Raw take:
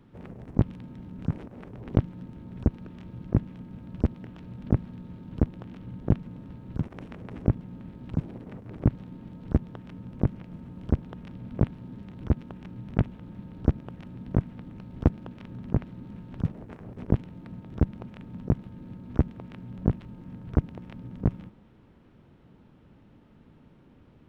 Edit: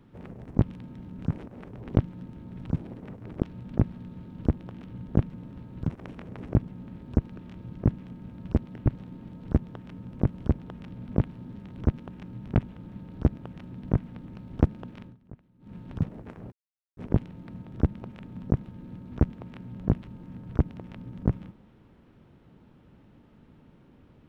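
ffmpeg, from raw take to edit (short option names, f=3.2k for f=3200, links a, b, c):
-filter_complex "[0:a]asplit=9[a][b][c][d][e][f][g][h][i];[a]atrim=end=2.622[j];[b]atrim=start=8.058:end=8.862[k];[c]atrim=start=4.348:end=8.062[l];[d]atrim=start=2.618:end=4.352[m];[e]atrim=start=8.858:end=10.312[n];[f]atrim=start=10.738:end=15.6,asetpts=PTS-STARTPTS,afade=t=out:st=4.692:d=0.17:silence=0.0891251[o];[g]atrim=start=15.6:end=16.02,asetpts=PTS-STARTPTS,volume=-21dB[p];[h]atrim=start=16.02:end=16.95,asetpts=PTS-STARTPTS,afade=t=in:d=0.17:silence=0.0891251,afade=t=out:st=0.926:d=0.004:c=hsin,apad=pad_dur=0.45[q];[i]atrim=start=16.95,asetpts=PTS-STARTPTS,afade=t=in:d=0.004:c=hsin[r];[j][k]acrossfade=d=0.004:c1=hsin:c2=hsin[s];[s][l]acrossfade=d=0.004:c1=hsin:c2=hsin[t];[t][m]acrossfade=d=0.004:c1=hsin:c2=hsin[u];[u][n]acrossfade=d=0.004:c1=hsin:c2=hsin[v];[o][p][q][r]concat=n=4:v=0:a=1[w];[v][w]acrossfade=d=0.004:c1=hsin:c2=hsin"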